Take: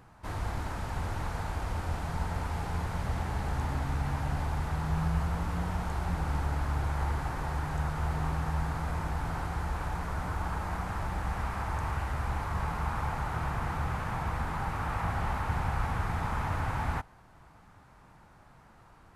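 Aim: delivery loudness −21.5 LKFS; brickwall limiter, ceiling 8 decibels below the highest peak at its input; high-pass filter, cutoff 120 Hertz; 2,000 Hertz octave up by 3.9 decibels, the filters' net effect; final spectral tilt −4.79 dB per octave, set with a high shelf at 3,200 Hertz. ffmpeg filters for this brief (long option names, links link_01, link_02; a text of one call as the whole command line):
ffmpeg -i in.wav -af "highpass=120,equalizer=frequency=2000:width_type=o:gain=3.5,highshelf=frequency=3200:gain=5.5,volume=15dB,alimiter=limit=-12dB:level=0:latency=1" out.wav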